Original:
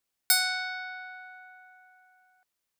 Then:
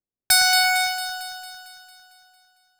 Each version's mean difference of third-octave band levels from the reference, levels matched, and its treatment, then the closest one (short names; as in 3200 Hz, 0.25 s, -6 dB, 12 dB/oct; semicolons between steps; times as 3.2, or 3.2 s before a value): 9.0 dB: low-pass opened by the level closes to 400 Hz, open at -26 dBFS; in parallel at -5 dB: fuzz box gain 45 dB, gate -39 dBFS; on the sum: echo with dull and thin repeats by turns 0.113 s, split 1800 Hz, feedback 76%, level -6 dB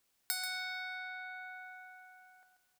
6.0 dB: compressor 3:1, threshold -48 dBFS, peak gain reduction 21 dB; on a send: echo 0.136 s -9.5 dB; on the sum: plate-style reverb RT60 2.2 s, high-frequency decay 0.75×, DRR 16 dB; gain +6 dB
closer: second